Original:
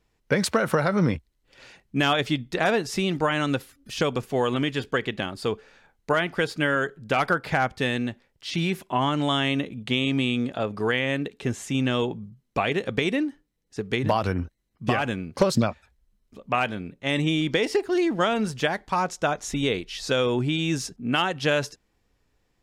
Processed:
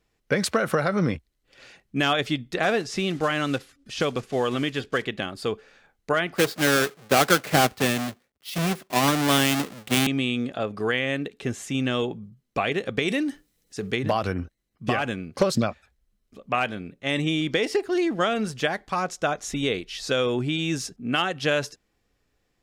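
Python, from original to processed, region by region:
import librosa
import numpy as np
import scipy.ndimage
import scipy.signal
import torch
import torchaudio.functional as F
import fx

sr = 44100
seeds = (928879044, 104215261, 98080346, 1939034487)

y = fx.chain(x, sr, fx.block_float(bits=5),
    fx.lowpass(hz=7800.0, slope=12), at=(2.63, 5.05))
y = fx.chain(y, sr, fx.halfwave_hold(),
    fx.highpass(hz=150.0, slope=6),
    fx.band_widen(depth_pct=70), at=(6.36, 10.07))
y = fx.chain(y, sr, fx.high_shelf(hz=3600.0, db=9.5),
    fx.transient(attack_db=-1, sustain_db=8), at=(13.08, 13.91))
y = fx.low_shelf(y, sr, hz=170.0, db=-4.0)
y = fx.notch(y, sr, hz=930.0, q=8.5)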